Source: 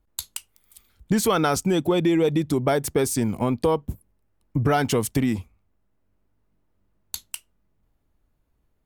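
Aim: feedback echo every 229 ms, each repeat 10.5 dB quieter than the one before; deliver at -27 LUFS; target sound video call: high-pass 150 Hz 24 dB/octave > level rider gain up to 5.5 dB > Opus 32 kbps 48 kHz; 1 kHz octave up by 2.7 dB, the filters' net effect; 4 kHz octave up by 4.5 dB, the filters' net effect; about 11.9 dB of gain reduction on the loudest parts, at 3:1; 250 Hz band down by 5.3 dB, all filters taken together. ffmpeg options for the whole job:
-af "equalizer=f=250:t=o:g=-7.5,equalizer=f=1000:t=o:g=4,equalizer=f=4000:t=o:g=5.5,acompressor=threshold=0.0224:ratio=3,highpass=f=150:w=0.5412,highpass=f=150:w=1.3066,aecho=1:1:229|458|687:0.299|0.0896|0.0269,dynaudnorm=m=1.88,volume=2.51" -ar 48000 -c:a libopus -b:a 32k

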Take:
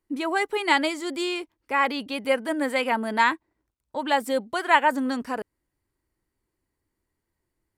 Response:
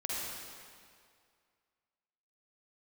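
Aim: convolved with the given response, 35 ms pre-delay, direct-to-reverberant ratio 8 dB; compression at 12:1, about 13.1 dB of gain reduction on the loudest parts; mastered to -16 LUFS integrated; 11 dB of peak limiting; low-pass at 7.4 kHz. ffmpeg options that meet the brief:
-filter_complex "[0:a]lowpass=7400,acompressor=threshold=0.0501:ratio=12,alimiter=level_in=1.33:limit=0.0631:level=0:latency=1,volume=0.75,asplit=2[s0][s1];[1:a]atrim=start_sample=2205,adelay=35[s2];[s1][s2]afir=irnorm=-1:irlink=0,volume=0.237[s3];[s0][s3]amix=inputs=2:normalize=0,volume=9.44"

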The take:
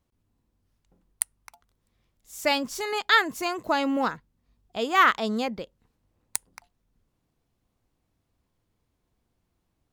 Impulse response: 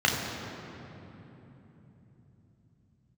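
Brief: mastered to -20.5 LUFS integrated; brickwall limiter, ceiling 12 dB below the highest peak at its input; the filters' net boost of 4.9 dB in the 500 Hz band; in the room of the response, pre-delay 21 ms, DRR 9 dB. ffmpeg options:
-filter_complex "[0:a]equalizer=f=500:t=o:g=6,alimiter=limit=0.188:level=0:latency=1,asplit=2[s0][s1];[1:a]atrim=start_sample=2205,adelay=21[s2];[s1][s2]afir=irnorm=-1:irlink=0,volume=0.0596[s3];[s0][s3]amix=inputs=2:normalize=0,volume=2.11"

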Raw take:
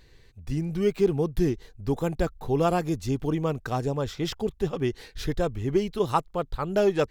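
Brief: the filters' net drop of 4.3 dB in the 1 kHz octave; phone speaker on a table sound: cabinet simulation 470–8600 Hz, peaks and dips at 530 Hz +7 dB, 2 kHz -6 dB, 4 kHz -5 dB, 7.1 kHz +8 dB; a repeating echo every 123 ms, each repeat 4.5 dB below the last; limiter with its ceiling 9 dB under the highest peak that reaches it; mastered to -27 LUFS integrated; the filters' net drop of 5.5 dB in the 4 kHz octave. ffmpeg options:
-af "equalizer=f=1000:t=o:g=-6.5,equalizer=f=4000:t=o:g=-5,alimiter=limit=0.0944:level=0:latency=1,highpass=f=470:w=0.5412,highpass=f=470:w=1.3066,equalizer=f=530:t=q:w=4:g=7,equalizer=f=2000:t=q:w=4:g=-6,equalizer=f=4000:t=q:w=4:g=-5,equalizer=f=7100:t=q:w=4:g=8,lowpass=f=8600:w=0.5412,lowpass=f=8600:w=1.3066,aecho=1:1:123|246|369|492|615|738|861|984|1107:0.596|0.357|0.214|0.129|0.0772|0.0463|0.0278|0.0167|0.01,volume=2.24"

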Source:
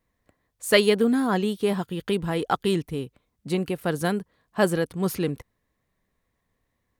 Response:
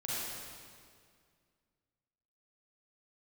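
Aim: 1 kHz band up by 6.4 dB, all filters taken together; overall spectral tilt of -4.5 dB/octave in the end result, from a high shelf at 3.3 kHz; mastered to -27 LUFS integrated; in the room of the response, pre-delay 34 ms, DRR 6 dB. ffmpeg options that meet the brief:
-filter_complex "[0:a]equalizer=f=1000:t=o:g=8,highshelf=f=3300:g=5.5,asplit=2[s0][s1];[1:a]atrim=start_sample=2205,adelay=34[s2];[s1][s2]afir=irnorm=-1:irlink=0,volume=0.316[s3];[s0][s3]amix=inputs=2:normalize=0,volume=0.562"

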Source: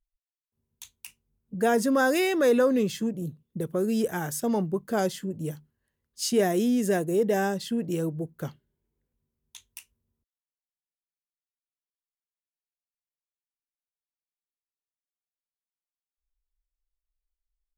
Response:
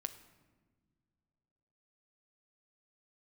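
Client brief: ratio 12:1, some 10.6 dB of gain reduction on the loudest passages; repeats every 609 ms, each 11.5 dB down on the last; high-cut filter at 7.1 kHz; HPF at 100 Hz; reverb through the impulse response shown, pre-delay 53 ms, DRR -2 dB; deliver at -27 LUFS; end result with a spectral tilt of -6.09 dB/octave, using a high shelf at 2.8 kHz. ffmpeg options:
-filter_complex "[0:a]highpass=100,lowpass=7100,highshelf=f=2800:g=-8,acompressor=threshold=0.0355:ratio=12,aecho=1:1:609|1218|1827:0.266|0.0718|0.0194,asplit=2[s0][s1];[1:a]atrim=start_sample=2205,adelay=53[s2];[s1][s2]afir=irnorm=-1:irlink=0,volume=1.5[s3];[s0][s3]amix=inputs=2:normalize=0,volume=1.5"

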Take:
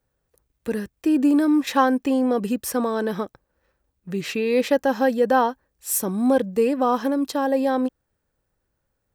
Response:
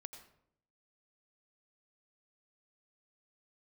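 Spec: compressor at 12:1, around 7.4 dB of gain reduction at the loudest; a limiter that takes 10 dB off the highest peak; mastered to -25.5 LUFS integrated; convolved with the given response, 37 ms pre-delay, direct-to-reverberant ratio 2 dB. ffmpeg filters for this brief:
-filter_complex "[0:a]acompressor=threshold=0.0891:ratio=12,alimiter=limit=0.0708:level=0:latency=1,asplit=2[s0][s1];[1:a]atrim=start_sample=2205,adelay=37[s2];[s1][s2]afir=irnorm=-1:irlink=0,volume=1.41[s3];[s0][s3]amix=inputs=2:normalize=0,volume=1.58"

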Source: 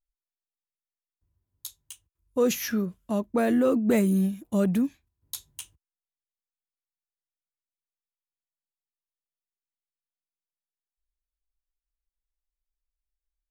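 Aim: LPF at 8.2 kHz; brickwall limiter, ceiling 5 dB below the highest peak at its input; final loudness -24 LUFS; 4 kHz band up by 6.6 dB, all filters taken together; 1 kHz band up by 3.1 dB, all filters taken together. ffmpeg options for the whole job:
-af "lowpass=8200,equalizer=f=1000:t=o:g=4,equalizer=f=4000:t=o:g=8.5,volume=1.33,alimiter=limit=0.211:level=0:latency=1"

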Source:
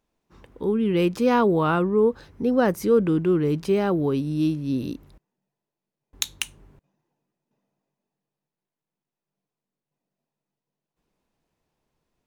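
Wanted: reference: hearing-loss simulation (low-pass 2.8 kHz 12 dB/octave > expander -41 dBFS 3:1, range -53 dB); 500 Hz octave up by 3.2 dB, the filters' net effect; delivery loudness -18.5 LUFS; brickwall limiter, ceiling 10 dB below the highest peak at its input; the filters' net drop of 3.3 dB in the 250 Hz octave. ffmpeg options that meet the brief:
-af "equalizer=f=250:t=o:g=-7,equalizer=f=500:t=o:g=6,alimiter=limit=0.2:level=0:latency=1,lowpass=2800,agate=range=0.00224:threshold=0.00891:ratio=3,volume=1.78"

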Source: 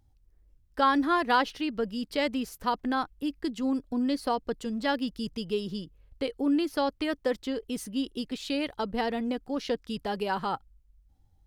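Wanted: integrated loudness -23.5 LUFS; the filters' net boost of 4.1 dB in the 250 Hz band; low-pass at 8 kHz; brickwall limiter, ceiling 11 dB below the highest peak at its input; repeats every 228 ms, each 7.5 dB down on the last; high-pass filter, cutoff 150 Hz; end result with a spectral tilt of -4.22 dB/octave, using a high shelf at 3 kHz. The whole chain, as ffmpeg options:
-af "highpass=150,lowpass=8000,equalizer=f=250:t=o:g=5,highshelf=f=3000:g=8.5,alimiter=limit=0.106:level=0:latency=1,aecho=1:1:228|456|684|912|1140:0.422|0.177|0.0744|0.0312|0.0131,volume=1.78"

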